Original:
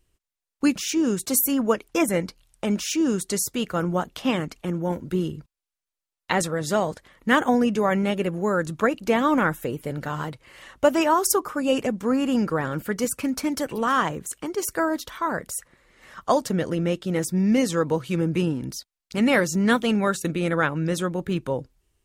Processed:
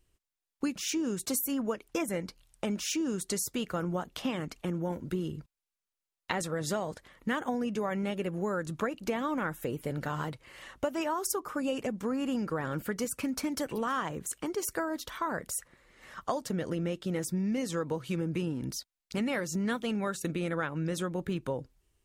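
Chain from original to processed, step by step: compression 5:1, threshold -26 dBFS, peak gain reduction 12.5 dB; trim -3 dB

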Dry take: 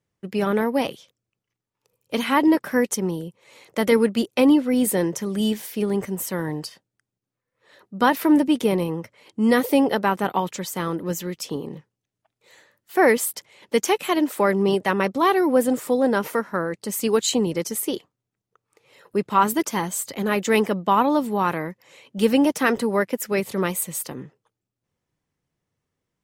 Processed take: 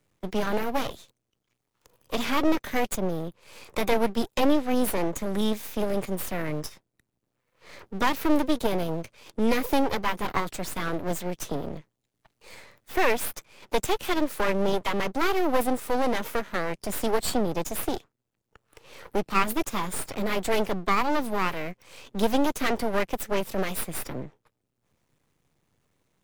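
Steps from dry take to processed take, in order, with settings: half-wave rectifier; formant shift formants +2 st; three bands compressed up and down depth 40%

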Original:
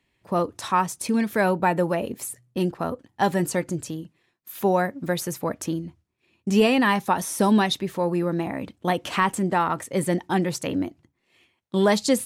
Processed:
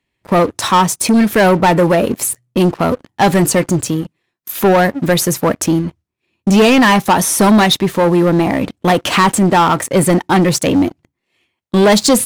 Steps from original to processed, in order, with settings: waveshaping leveller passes 3; trim +4 dB

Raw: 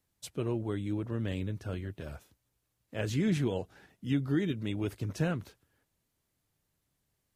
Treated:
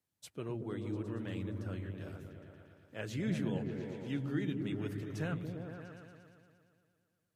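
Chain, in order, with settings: high-pass 99 Hz; dynamic bell 1.6 kHz, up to +4 dB, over -55 dBFS, Q 0.97; delay with an opening low-pass 116 ms, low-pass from 200 Hz, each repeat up 1 oct, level 0 dB; trim -8 dB

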